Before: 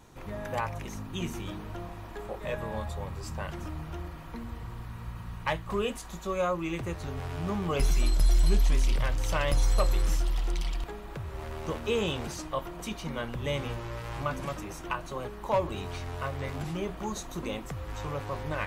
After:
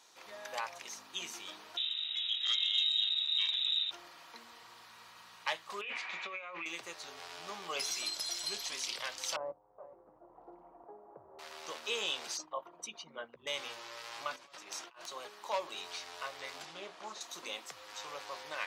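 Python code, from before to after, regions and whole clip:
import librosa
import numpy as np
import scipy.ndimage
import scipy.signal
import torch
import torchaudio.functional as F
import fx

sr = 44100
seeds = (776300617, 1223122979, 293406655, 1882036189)

y = fx.chain(x, sr, fx.freq_invert(carrier_hz=3800),
    fx.transformer_sat(knee_hz=1400.0), at=(1.77, 3.91))
y = fx.chain(y, sr, fx.lowpass_res(hz=2300.0, q=7.6),
    fx.over_compress(threshold_db=-35.0, ratio=-1.0), at=(5.81, 6.66))
y = fx.chain(y, sr, fx.cheby2_lowpass(hz=3600.0, order=4, stop_db=70),
    fx.over_compress(threshold_db=-27.0, ratio=-0.5),
    fx.echo_single(ms=423, db=-15.5), at=(9.36, 11.39))
y = fx.chain(y, sr, fx.envelope_sharpen(power=2.0),
    fx.doubler(ms=13.0, db=-12.5), at=(12.37, 13.47))
y = fx.chain(y, sr, fx.high_shelf(hz=9100.0, db=-9.0),
    fx.over_compress(threshold_db=-41.0, ratio=-0.5),
    fx.overflow_wrap(gain_db=27.5), at=(14.36, 15.06))
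y = fx.chain(y, sr, fx.delta_mod(bps=64000, step_db=-48.5),
    fx.lowpass(hz=2600.0, slope=6),
    fx.doppler_dist(depth_ms=0.23), at=(16.65, 17.21))
y = scipy.signal.sosfilt(scipy.signal.butter(2, 600.0, 'highpass', fs=sr, output='sos'), y)
y = fx.peak_eq(y, sr, hz=4800.0, db=13.0, octaves=1.6)
y = y * librosa.db_to_amplitude(-7.0)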